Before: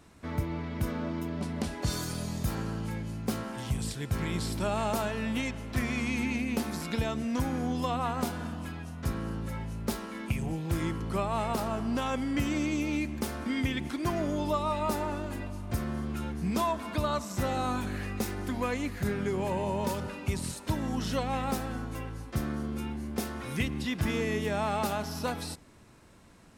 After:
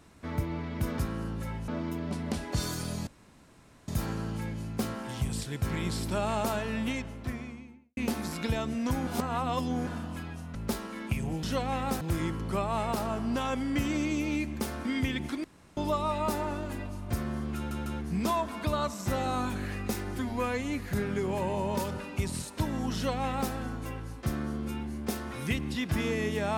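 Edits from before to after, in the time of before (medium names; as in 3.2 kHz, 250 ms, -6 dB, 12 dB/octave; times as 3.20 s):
2.37 s: insert room tone 0.81 s
5.24–6.46 s: studio fade out
7.56–8.36 s: reverse
9.04–9.74 s: move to 0.98 s
14.05–14.38 s: room tone
16.17 s: stutter 0.15 s, 3 plays
18.46–18.89 s: stretch 1.5×
21.04–21.62 s: copy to 10.62 s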